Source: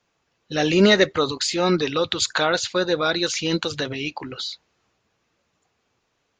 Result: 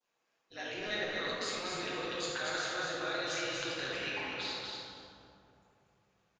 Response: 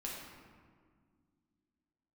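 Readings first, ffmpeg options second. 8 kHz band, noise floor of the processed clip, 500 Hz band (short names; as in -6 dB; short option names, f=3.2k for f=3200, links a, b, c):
-14.0 dB, -80 dBFS, -17.5 dB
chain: -filter_complex "[0:a]areverse,acompressor=threshold=-30dB:ratio=4,areverse,adynamicequalizer=threshold=0.00355:dfrequency=2100:dqfactor=1:tfrequency=2100:tqfactor=1:attack=5:release=100:ratio=0.375:range=3.5:mode=boostabove:tftype=bell,highpass=400,aecho=1:1:240|480|720:0.631|0.145|0.0334,tremolo=f=200:d=0.75[a];[1:a]atrim=start_sample=2205,asetrate=27342,aresample=44100[b];[a][b]afir=irnorm=-1:irlink=0,volume=-6.5dB"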